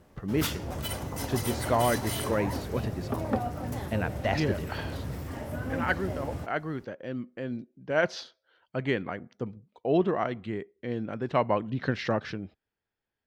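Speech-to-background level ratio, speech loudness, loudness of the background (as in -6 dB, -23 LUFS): 3.0 dB, -31.5 LUFS, -34.5 LUFS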